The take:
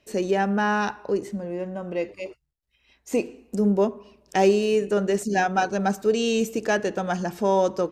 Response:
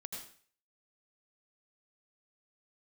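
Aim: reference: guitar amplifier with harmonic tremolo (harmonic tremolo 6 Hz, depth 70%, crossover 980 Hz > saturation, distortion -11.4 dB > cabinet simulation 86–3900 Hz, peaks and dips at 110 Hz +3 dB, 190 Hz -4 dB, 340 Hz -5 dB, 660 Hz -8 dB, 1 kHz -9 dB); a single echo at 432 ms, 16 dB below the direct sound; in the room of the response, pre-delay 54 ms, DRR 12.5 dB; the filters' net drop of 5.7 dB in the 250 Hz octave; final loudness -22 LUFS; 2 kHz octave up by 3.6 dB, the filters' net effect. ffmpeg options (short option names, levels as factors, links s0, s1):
-filter_complex "[0:a]equalizer=f=250:t=o:g=-3.5,equalizer=f=2000:t=o:g=6,aecho=1:1:432:0.158,asplit=2[s0][s1];[1:a]atrim=start_sample=2205,adelay=54[s2];[s1][s2]afir=irnorm=-1:irlink=0,volume=0.316[s3];[s0][s3]amix=inputs=2:normalize=0,acrossover=split=980[s4][s5];[s4]aeval=exprs='val(0)*(1-0.7/2+0.7/2*cos(2*PI*6*n/s))':c=same[s6];[s5]aeval=exprs='val(0)*(1-0.7/2-0.7/2*cos(2*PI*6*n/s))':c=same[s7];[s6][s7]amix=inputs=2:normalize=0,asoftclip=threshold=0.0794,highpass=86,equalizer=f=110:t=q:w=4:g=3,equalizer=f=190:t=q:w=4:g=-4,equalizer=f=340:t=q:w=4:g=-5,equalizer=f=660:t=q:w=4:g=-8,equalizer=f=1000:t=q:w=4:g=-9,lowpass=f=3900:w=0.5412,lowpass=f=3900:w=1.3066,volume=3.55"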